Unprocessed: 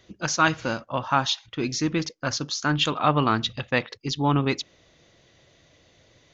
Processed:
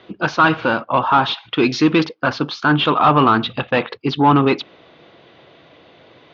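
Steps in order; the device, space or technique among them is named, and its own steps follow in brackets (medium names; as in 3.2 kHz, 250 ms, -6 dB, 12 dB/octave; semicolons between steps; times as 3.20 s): overdrive pedal into a guitar cabinet (overdrive pedal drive 21 dB, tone 1 kHz, clips at -5.5 dBFS; cabinet simulation 77–3900 Hz, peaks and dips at 100 Hz -4 dB, 570 Hz -5 dB, 1.9 kHz -7 dB); 1.46–2.05 s: treble shelf 3.1 kHz +11.5 dB; trim +6 dB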